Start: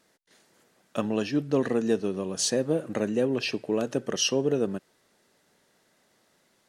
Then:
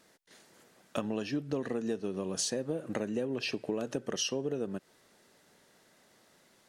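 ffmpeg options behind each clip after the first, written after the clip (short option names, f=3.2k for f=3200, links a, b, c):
-af "acompressor=threshold=-33dB:ratio=6,volume=2.5dB"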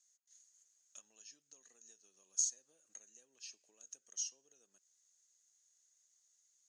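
-af "bandpass=f=6.6k:t=q:w=15:csg=0,volume=7dB"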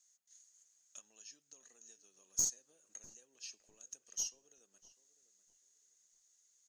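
-filter_complex "[0:a]aeval=exprs='(tanh(15.8*val(0)+0.3)-tanh(0.3))/15.8':c=same,asplit=2[a][b];[b]adelay=649,lowpass=f=1.3k:p=1,volume=-13dB,asplit=2[c][d];[d]adelay=649,lowpass=f=1.3k:p=1,volume=0.32,asplit=2[e][f];[f]adelay=649,lowpass=f=1.3k:p=1,volume=0.32[g];[a][c][e][g]amix=inputs=4:normalize=0,volume=3dB"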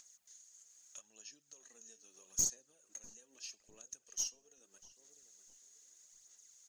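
-af "acompressor=mode=upward:threshold=-54dB:ratio=2.5,aphaser=in_gain=1:out_gain=1:delay=4.5:decay=0.43:speed=0.79:type=sinusoidal"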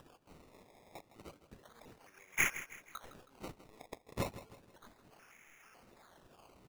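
-af "acrusher=samples=20:mix=1:aa=0.000001:lfo=1:lforange=20:lforate=0.32,aecho=1:1:160|320|480|640:0.2|0.0798|0.0319|0.0128,volume=1dB"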